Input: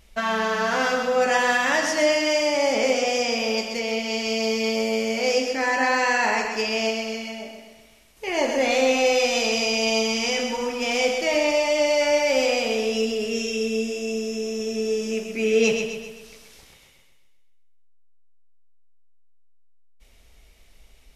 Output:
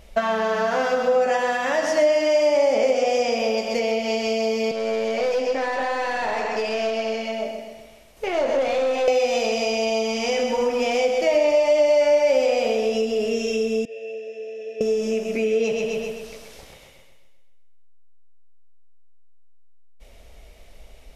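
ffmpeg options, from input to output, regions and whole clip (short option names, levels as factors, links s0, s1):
-filter_complex "[0:a]asettb=1/sr,asplit=3[s0][s1][s2];[s0]atrim=end=4.714[s3];[s1]atrim=start=4.71:end=9.08,asetpts=PTS-STARTPTS,afade=t=in:d=0.004:c=qsin,afade=t=out:st=4.366:d=0.004:c=qsin,aeval=exprs='(tanh(12.6*val(0)+0.45)-tanh(0.45))/12.6':c=same,acrossover=split=260|5700[s4][s5][s6];[s4]acompressor=threshold=0.00501:ratio=4[s7];[s5]acompressor=threshold=0.0355:ratio=4[s8];[s6]acompressor=threshold=0.00158:ratio=4[s9];[s7][s8][s9]amix=inputs=3:normalize=0[s10];[s2]atrim=start=9.076[s11];[s3][s10]acrossfade=d=0.004:c1=hsin:c2=qsin[s12];[s12][s11]acrossfade=d=0.004:c1=qsin:c2=hsin,asettb=1/sr,asplit=3[s13][s14][s15];[s13]atrim=end=13.854[s16];[s14]atrim=start=13.85:end=14.81,asetpts=PTS-STARTPTS,afade=t=in:d=0.004:c=qsin,afade=t=out:st=0.956:d=0.004:c=qsin,asplit=3[s17][s18][s19];[s17]bandpass=f=530:t=q:w=8,volume=1[s20];[s18]bandpass=f=1840:t=q:w=8,volume=0.501[s21];[s19]bandpass=f=2480:t=q:w=8,volume=0.355[s22];[s20][s21][s22]amix=inputs=3:normalize=0,lowshelf=f=360:g=-11[s23];[s15]atrim=start=14.806[s24];[s16][s23]acrossfade=d=0.004:c1=hsin:c2=qsin[s25];[s25][s24]acrossfade=d=0.004:c1=qsin:c2=hsin,bass=f=250:g=3,treble=f=4000:g=-2,acompressor=threshold=0.0398:ratio=6,equalizer=f=590:t=o:w=0.96:g=10,volume=1.58"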